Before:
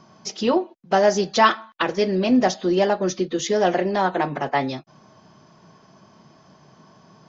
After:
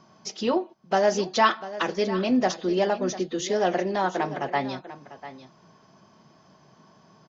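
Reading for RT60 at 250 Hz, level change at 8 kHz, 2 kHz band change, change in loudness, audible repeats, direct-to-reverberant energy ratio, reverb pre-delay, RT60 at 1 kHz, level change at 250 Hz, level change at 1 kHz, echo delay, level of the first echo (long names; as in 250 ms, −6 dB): no reverb audible, can't be measured, −4.0 dB, −4.0 dB, 1, no reverb audible, no reverb audible, no reverb audible, −4.5 dB, −4.0 dB, 696 ms, −14.5 dB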